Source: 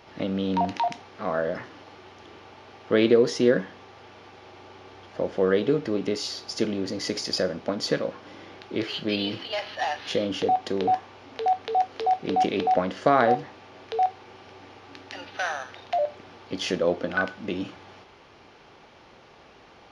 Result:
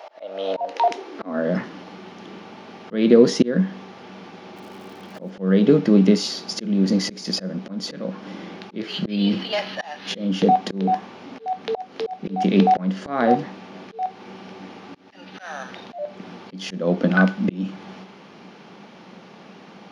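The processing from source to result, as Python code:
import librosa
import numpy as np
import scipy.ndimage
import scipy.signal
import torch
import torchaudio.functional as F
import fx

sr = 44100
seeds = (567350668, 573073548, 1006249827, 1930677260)

y = fx.filter_sweep_highpass(x, sr, from_hz=640.0, to_hz=190.0, start_s=0.54, end_s=1.54, q=6.8)
y = fx.dmg_crackle(y, sr, seeds[0], per_s=210.0, level_db=-43.0, at=(4.56, 5.29), fade=0.02)
y = fx.auto_swell(y, sr, attack_ms=333.0)
y = y * librosa.db_to_amplitude(5.0)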